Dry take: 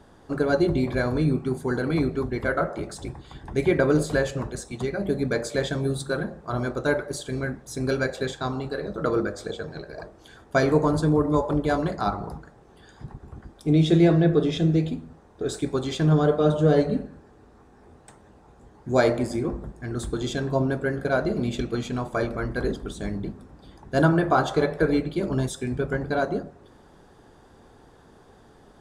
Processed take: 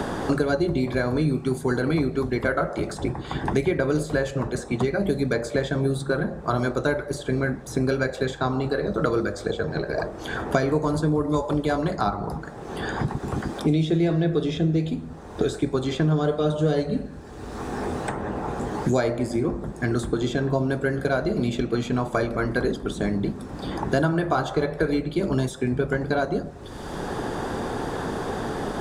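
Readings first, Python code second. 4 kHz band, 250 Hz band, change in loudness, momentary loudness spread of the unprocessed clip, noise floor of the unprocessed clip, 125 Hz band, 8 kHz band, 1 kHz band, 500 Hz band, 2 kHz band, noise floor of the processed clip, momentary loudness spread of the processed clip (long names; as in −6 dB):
+0.5 dB, +0.5 dB, −0.5 dB, 14 LU, −53 dBFS, 0.0 dB, −0.5 dB, +1.0 dB, 0.0 dB, +1.0 dB, −38 dBFS, 7 LU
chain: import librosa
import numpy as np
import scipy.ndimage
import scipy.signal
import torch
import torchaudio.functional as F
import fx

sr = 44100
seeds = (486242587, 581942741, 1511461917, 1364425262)

y = fx.band_squash(x, sr, depth_pct=100)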